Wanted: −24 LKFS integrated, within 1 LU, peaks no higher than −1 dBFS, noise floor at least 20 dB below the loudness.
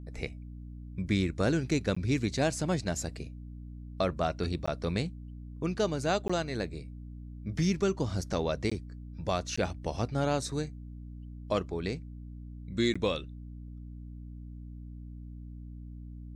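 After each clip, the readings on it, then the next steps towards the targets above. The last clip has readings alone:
number of dropouts 6; longest dropout 15 ms; mains hum 60 Hz; hum harmonics up to 300 Hz; level of the hum −41 dBFS; integrated loudness −32.0 LKFS; sample peak −16.0 dBFS; target loudness −24.0 LKFS
→ repair the gap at 0:01.95/0:04.66/0:06.28/0:08.70/0:09.56/0:12.94, 15 ms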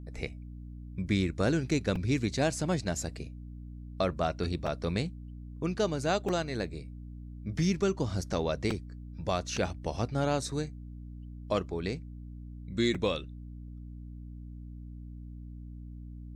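number of dropouts 0; mains hum 60 Hz; hum harmonics up to 300 Hz; level of the hum −41 dBFS
→ hum removal 60 Hz, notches 5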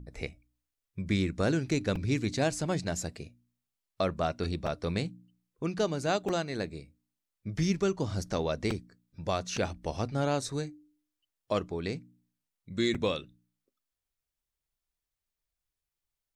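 mains hum none found; integrated loudness −32.0 LKFS; sample peak −16.0 dBFS; target loudness −24.0 LKFS
→ level +8 dB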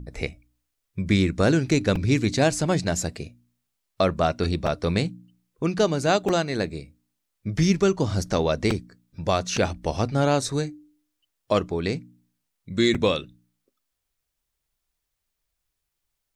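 integrated loudness −24.0 LKFS; sample peak −8.0 dBFS; background noise floor −80 dBFS

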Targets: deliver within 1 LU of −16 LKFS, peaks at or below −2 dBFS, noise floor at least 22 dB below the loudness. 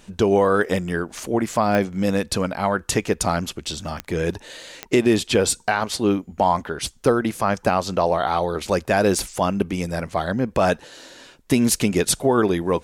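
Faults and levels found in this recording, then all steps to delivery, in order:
number of clicks 4; integrated loudness −21.5 LKFS; sample peak −6.5 dBFS; target loudness −16.0 LKFS
→ click removal
level +5.5 dB
brickwall limiter −2 dBFS

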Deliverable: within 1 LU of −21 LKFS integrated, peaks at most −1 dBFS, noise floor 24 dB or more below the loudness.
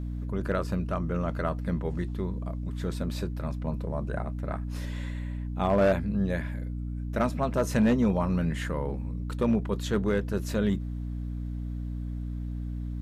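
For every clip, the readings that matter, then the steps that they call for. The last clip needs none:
share of clipped samples 0.4%; peaks flattened at −17.0 dBFS; mains hum 60 Hz; hum harmonics up to 300 Hz; level of the hum −31 dBFS; integrated loudness −30.0 LKFS; sample peak −17.0 dBFS; target loudness −21.0 LKFS
→ clipped peaks rebuilt −17 dBFS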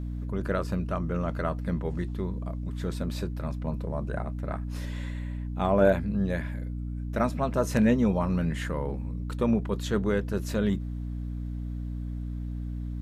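share of clipped samples 0.0%; mains hum 60 Hz; hum harmonics up to 300 Hz; level of the hum −31 dBFS
→ hum removal 60 Hz, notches 5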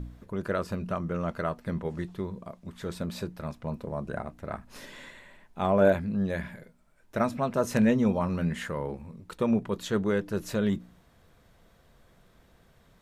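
mains hum none found; integrated loudness −30.0 LKFS; sample peak −10.5 dBFS; target loudness −21.0 LKFS
→ level +9 dB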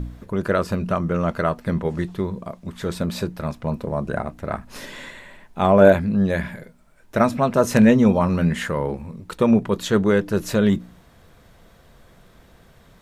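integrated loudness −21.0 LKFS; sample peak −1.5 dBFS; background noise floor −53 dBFS

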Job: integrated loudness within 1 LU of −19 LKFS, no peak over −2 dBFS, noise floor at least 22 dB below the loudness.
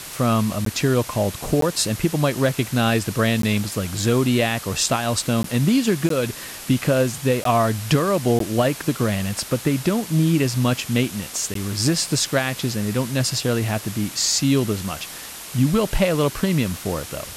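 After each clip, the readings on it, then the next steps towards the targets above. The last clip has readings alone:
number of dropouts 8; longest dropout 13 ms; background noise floor −36 dBFS; target noise floor −43 dBFS; integrated loudness −21.0 LKFS; sample peak −7.5 dBFS; target loudness −19.0 LKFS
→ repair the gap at 0:00.65/0:01.61/0:03.42/0:05.43/0:06.09/0:07.44/0:08.39/0:11.54, 13 ms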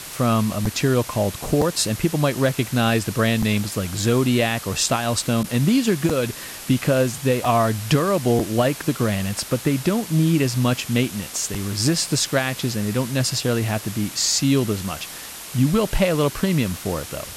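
number of dropouts 0; background noise floor −36 dBFS; target noise floor −43 dBFS
→ broadband denoise 7 dB, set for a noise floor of −36 dBFS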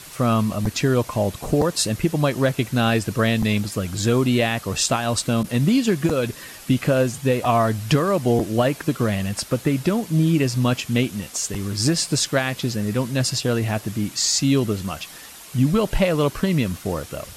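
background noise floor −41 dBFS; target noise floor −44 dBFS
→ broadband denoise 6 dB, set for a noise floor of −41 dBFS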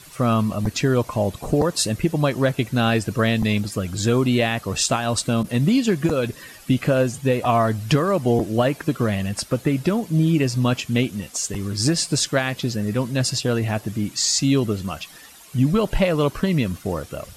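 background noise floor −45 dBFS; integrated loudness −21.5 LKFS; sample peak −8.0 dBFS; target loudness −19.0 LKFS
→ level +2.5 dB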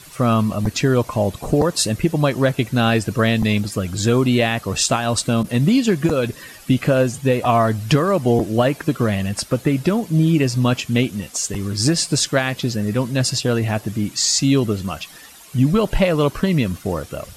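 integrated loudness −19.0 LKFS; sample peak −5.5 dBFS; background noise floor −42 dBFS

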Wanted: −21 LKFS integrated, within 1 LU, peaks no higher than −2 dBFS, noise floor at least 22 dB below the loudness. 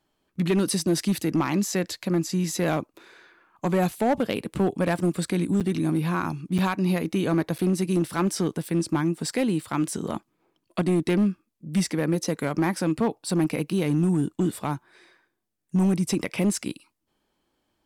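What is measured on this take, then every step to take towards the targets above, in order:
share of clipped samples 1.6%; peaks flattened at −16.5 dBFS; number of dropouts 3; longest dropout 7.5 ms; integrated loudness −25.5 LKFS; sample peak −16.5 dBFS; target loudness −21.0 LKFS
→ clipped peaks rebuilt −16.5 dBFS
repair the gap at 0:05.60/0:06.58/0:07.58, 7.5 ms
level +4.5 dB

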